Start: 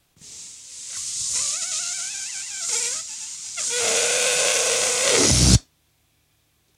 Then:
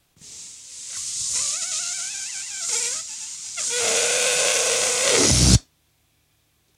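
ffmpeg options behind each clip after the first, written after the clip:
ffmpeg -i in.wav -af anull out.wav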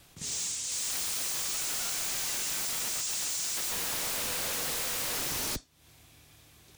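ffmpeg -i in.wav -af "acompressor=threshold=-29dB:ratio=8,aeval=exprs='0.0168*(abs(mod(val(0)/0.0168+3,4)-2)-1)':channel_layout=same,volume=7.5dB" out.wav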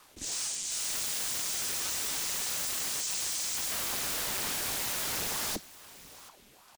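ffmpeg -i in.wav -af "aecho=1:1:732:0.119,aeval=exprs='val(0)*sin(2*PI*630*n/s+630*0.85/2.4*sin(2*PI*2.4*n/s))':channel_layout=same,volume=2.5dB" out.wav

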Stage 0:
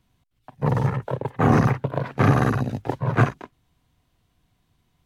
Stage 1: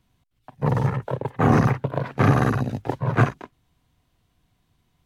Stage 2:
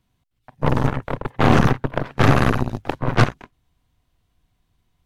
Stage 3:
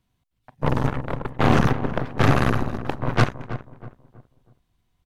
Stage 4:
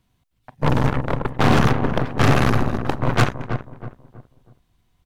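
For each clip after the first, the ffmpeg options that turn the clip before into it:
ffmpeg -i in.wav -af anull out.wav
ffmpeg -i in.wav -af "asubboost=boost=2:cutoff=85,aeval=exprs='0.531*(cos(1*acos(clip(val(0)/0.531,-1,1)))-cos(1*PI/2))+0.0335*(cos(7*acos(clip(val(0)/0.531,-1,1)))-cos(7*PI/2))+0.0841*(cos(8*acos(clip(val(0)/0.531,-1,1)))-cos(8*PI/2))':channel_layout=same,volume=2.5dB" out.wav
ffmpeg -i in.wav -filter_complex "[0:a]asplit=2[link_01][link_02];[link_02]adelay=322,lowpass=frequency=1300:poles=1,volume=-11.5dB,asplit=2[link_03][link_04];[link_04]adelay=322,lowpass=frequency=1300:poles=1,volume=0.37,asplit=2[link_05][link_06];[link_06]adelay=322,lowpass=frequency=1300:poles=1,volume=0.37,asplit=2[link_07][link_08];[link_08]adelay=322,lowpass=frequency=1300:poles=1,volume=0.37[link_09];[link_01][link_03][link_05][link_07][link_09]amix=inputs=5:normalize=0,volume=-3dB" out.wav
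ffmpeg -i in.wav -af "asoftclip=type=hard:threshold=-14dB,volume=5.5dB" out.wav

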